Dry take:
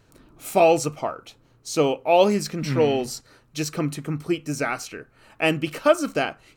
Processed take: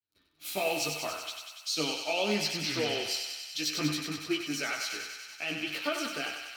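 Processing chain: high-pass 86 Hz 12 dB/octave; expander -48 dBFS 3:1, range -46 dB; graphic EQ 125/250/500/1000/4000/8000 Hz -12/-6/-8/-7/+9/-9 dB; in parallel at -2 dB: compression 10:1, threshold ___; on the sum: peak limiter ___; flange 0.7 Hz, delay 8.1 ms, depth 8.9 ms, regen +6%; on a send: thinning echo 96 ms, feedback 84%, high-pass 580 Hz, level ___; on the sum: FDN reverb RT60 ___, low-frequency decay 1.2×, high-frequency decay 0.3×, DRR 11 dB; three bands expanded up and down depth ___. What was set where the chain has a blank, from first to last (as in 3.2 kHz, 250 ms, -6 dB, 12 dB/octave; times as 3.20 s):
-38 dBFS, -19 dBFS, -5 dB, 0.43 s, 40%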